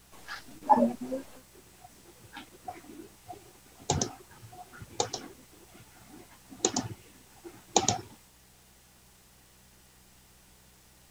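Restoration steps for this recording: de-hum 62.8 Hz, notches 3

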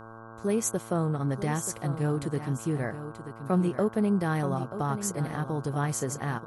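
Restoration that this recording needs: de-hum 112.7 Hz, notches 14; notch 1100 Hz, Q 30; inverse comb 0.932 s -11 dB

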